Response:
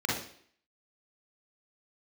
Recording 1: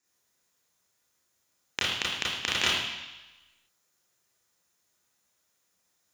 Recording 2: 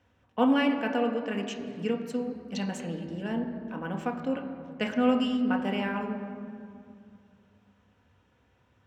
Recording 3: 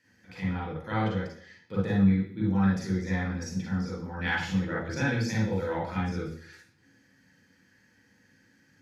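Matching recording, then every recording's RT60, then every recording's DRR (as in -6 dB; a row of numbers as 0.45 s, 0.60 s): 3; 1.1 s, 2.3 s, 0.60 s; -5.0 dB, 2.0 dB, -5.0 dB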